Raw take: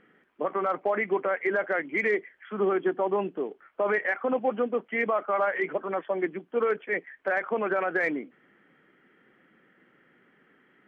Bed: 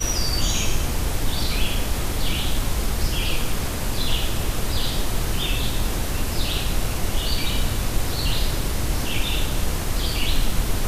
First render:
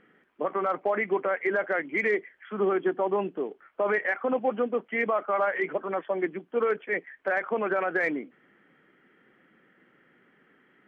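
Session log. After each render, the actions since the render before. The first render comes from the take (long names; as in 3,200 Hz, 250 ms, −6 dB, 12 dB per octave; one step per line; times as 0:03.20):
no processing that can be heard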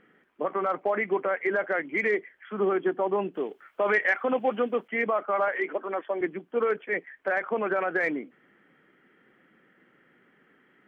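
0:03.34–0:04.88: high-shelf EQ 2,400 Hz +11.5 dB
0:05.48–0:06.21: Chebyshev high-pass filter 250 Hz, order 3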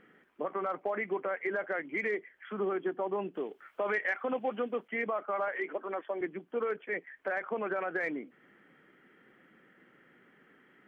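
downward compressor 1.5 to 1, threshold −42 dBFS, peak gain reduction 8 dB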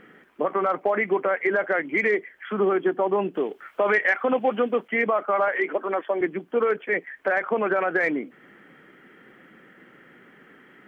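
level +10.5 dB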